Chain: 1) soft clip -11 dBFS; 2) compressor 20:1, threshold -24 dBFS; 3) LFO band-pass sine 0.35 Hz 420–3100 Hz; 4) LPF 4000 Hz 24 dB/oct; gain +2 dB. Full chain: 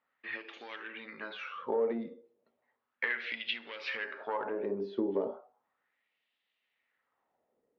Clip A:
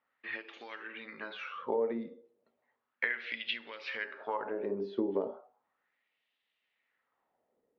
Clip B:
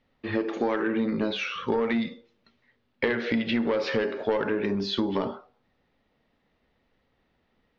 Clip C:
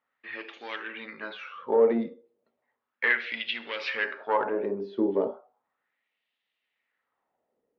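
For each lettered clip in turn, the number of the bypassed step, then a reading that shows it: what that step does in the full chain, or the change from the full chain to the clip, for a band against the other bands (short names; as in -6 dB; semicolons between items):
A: 1, distortion -14 dB; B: 3, 250 Hz band +6.0 dB; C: 2, mean gain reduction 5.0 dB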